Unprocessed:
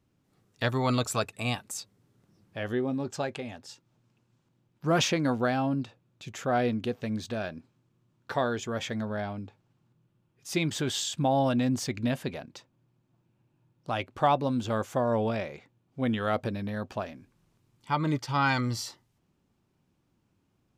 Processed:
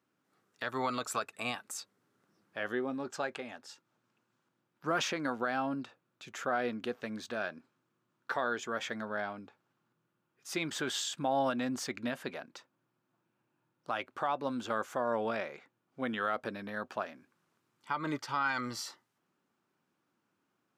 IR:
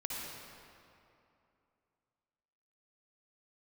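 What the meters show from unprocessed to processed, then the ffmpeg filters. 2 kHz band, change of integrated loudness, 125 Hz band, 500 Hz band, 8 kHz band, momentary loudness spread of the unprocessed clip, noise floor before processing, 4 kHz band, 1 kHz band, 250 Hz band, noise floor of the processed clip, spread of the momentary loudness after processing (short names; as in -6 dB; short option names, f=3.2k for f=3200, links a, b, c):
-1.5 dB, -6.0 dB, -17.0 dB, -6.0 dB, -5.0 dB, 15 LU, -73 dBFS, -5.5 dB, -4.5 dB, -8.5 dB, -81 dBFS, 14 LU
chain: -af "highpass=250,equalizer=f=1.4k:w=1.5:g=8.5,alimiter=limit=-17dB:level=0:latency=1:release=140,volume=-4.5dB"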